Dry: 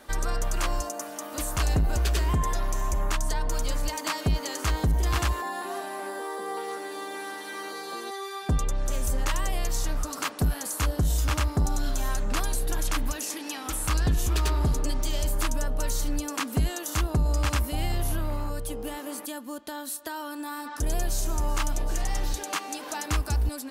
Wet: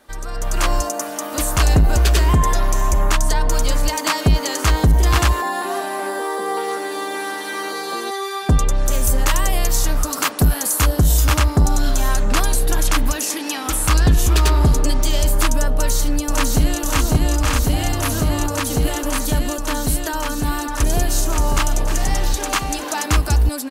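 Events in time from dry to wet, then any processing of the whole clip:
8.71–11.38 s: treble shelf 12 kHz +10 dB
15.73–16.81 s: echo throw 550 ms, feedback 85%, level 0 dB
whole clip: level rider gain up to 13.5 dB; trim -3 dB

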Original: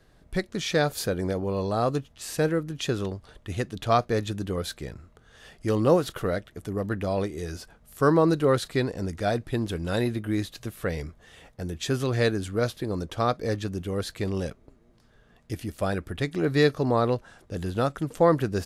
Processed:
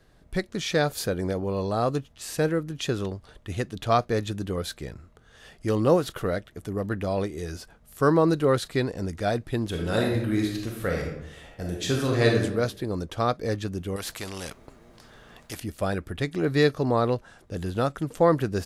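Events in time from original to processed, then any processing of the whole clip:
9.69–12.43 s: reverb throw, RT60 0.83 s, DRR -0.5 dB
13.96–15.60 s: spectrum-flattening compressor 2:1

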